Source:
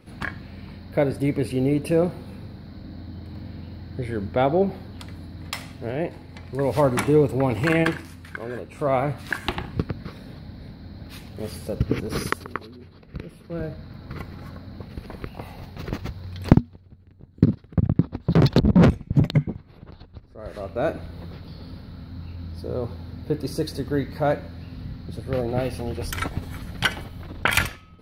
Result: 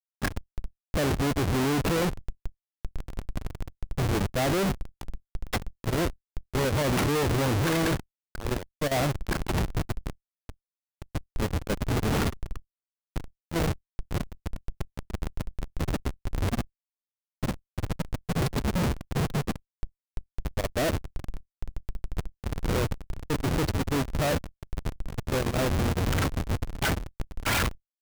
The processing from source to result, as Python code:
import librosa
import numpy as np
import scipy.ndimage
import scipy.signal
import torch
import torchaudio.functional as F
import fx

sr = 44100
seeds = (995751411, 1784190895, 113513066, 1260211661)

y = fx.schmitt(x, sr, flips_db=-30.0)
y = fx.level_steps(y, sr, step_db=13)
y = F.gain(torch.from_numpy(y), 1.5).numpy()